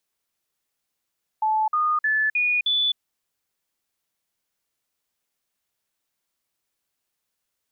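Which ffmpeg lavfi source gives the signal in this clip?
-f lavfi -i "aevalsrc='0.119*clip(min(mod(t,0.31),0.26-mod(t,0.31))/0.005,0,1)*sin(2*PI*868*pow(2,floor(t/0.31)/2)*mod(t,0.31))':d=1.55:s=44100"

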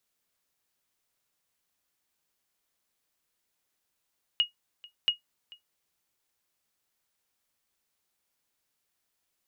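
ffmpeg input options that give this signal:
-f lavfi -i "aevalsrc='0.168*(sin(2*PI*2880*mod(t,0.68))*exp(-6.91*mod(t,0.68)/0.13)+0.0668*sin(2*PI*2880*max(mod(t,0.68)-0.44,0))*exp(-6.91*max(mod(t,0.68)-0.44,0)/0.13))':d=1.36:s=44100"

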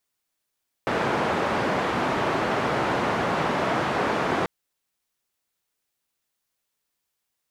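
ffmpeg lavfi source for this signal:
-f lavfi -i "anoisesrc=c=white:d=3.59:r=44100:seed=1,highpass=f=120,lowpass=f=1100,volume=-6.6dB"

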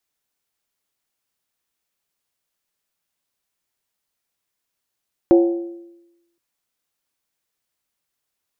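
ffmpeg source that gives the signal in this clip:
-f lavfi -i "aevalsrc='0.447*pow(10,-3*t/0.97)*sin(2*PI*342*t)+0.168*pow(10,-3*t/0.768)*sin(2*PI*545.1*t)+0.0631*pow(10,-3*t/0.664)*sin(2*PI*730.5*t)+0.0237*pow(10,-3*t/0.64)*sin(2*PI*785.2*t)+0.00891*pow(10,-3*t/0.596)*sin(2*PI*907.3*t)':d=1.07:s=44100"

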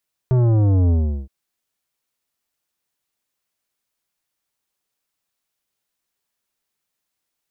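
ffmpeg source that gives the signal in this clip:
-f lavfi -i "aevalsrc='0.2*clip((0.97-t)/0.38,0,1)*tanh(3.98*sin(2*PI*130*0.97/log(65/130)*(exp(log(65/130)*t/0.97)-1)))/tanh(3.98)':d=0.97:s=44100"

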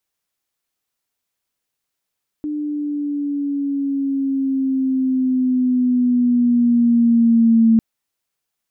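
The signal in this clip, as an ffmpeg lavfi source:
-f lavfi -i "aevalsrc='pow(10,(-9+12*(t/5.35-1))/20)*sin(2*PI*300*5.35/(-5*log(2)/12)*(exp(-5*log(2)/12*t/5.35)-1))':d=5.35:s=44100"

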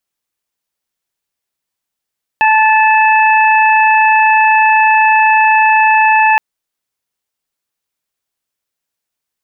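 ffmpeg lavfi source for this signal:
-f lavfi -i "aevalsrc='0.398*sin(2*PI*872*t)+0.224*sin(2*PI*1744*t)+0.211*sin(2*PI*2616*t)':d=3.97:s=44100"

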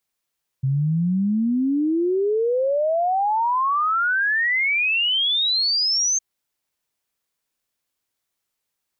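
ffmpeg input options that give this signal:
-f lavfi -i "aevalsrc='0.133*clip(min(t,5.56-t)/0.01,0,1)*sin(2*PI*130*5.56/log(6400/130)*(exp(log(6400/130)*t/5.56)-1))':d=5.56:s=44100"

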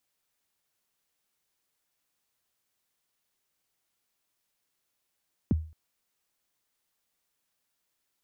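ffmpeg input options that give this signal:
-f lavfi -i "aevalsrc='0.126*pow(10,-3*t/0.39)*sin(2*PI*(320*0.022/log(79/320)*(exp(log(79/320)*min(t,0.022)/0.022)-1)+79*max(t-0.022,0)))':d=0.22:s=44100"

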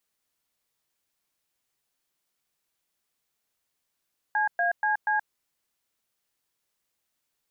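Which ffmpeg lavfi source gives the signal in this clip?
-f lavfi -i "aevalsrc='0.0596*clip(min(mod(t,0.24),0.126-mod(t,0.24))/0.002,0,1)*(eq(floor(t/0.24),0)*(sin(2*PI*852*mod(t,0.24))+sin(2*PI*1633*mod(t,0.24)))+eq(floor(t/0.24),1)*(sin(2*PI*697*mod(t,0.24))+sin(2*PI*1633*mod(t,0.24)))+eq(floor(t/0.24),2)*(sin(2*PI*852*mod(t,0.24))+sin(2*PI*1633*mod(t,0.24)))+eq(floor(t/0.24),3)*(sin(2*PI*852*mod(t,0.24))+sin(2*PI*1633*mod(t,0.24))))':d=0.96:s=44100"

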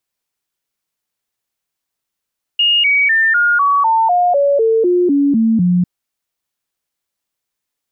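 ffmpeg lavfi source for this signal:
-f lavfi -i "aevalsrc='0.335*clip(min(mod(t,0.25),0.25-mod(t,0.25))/0.005,0,1)*sin(2*PI*2850*pow(2,-floor(t/0.25)/3)*mod(t,0.25))':d=3.25:s=44100"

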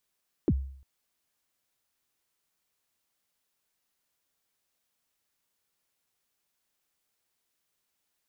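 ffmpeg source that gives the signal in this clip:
-f lavfi -i "aevalsrc='0.126*pow(10,-3*t/0.59)*sin(2*PI*(410*0.049/log(67/410)*(exp(log(67/410)*min(t,0.049)/0.049)-1)+67*max(t-0.049,0)))':d=0.35:s=44100"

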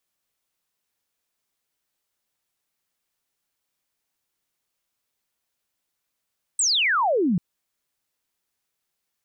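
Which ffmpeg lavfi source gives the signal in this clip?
-f lavfi -i "aevalsrc='0.126*clip(t/0.002,0,1)*clip((0.79-t)/0.002,0,1)*sin(2*PI*8500*0.79/log(160/8500)*(exp(log(160/8500)*t/0.79)-1))':d=0.79:s=44100"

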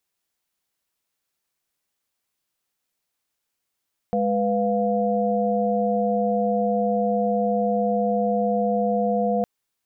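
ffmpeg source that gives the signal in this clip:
-f lavfi -i "aevalsrc='0.0668*(sin(2*PI*207.65*t)+sin(2*PI*493.88*t)+sin(2*PI*698.46*t))':d=5.31:s=44100"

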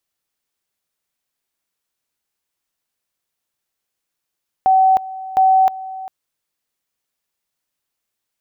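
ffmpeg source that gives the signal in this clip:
-f lavfi -i "aevalsrc='pow(10,(-9-17.5*gte(mod(t,0.71),0.31))/20)*sin(2*PI*760*t)':d=1.42:s=44100"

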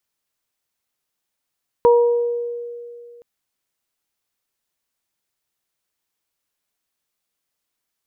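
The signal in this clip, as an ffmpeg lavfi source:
-f lavfi -i "aevalsrc='0.376*pow(10,-3*t/2.47)*sin(2*PI*476*t)+0.188*pow(10,-3*t/0.79)*sin(2*PI*952*t)':d=1.37:s=44100"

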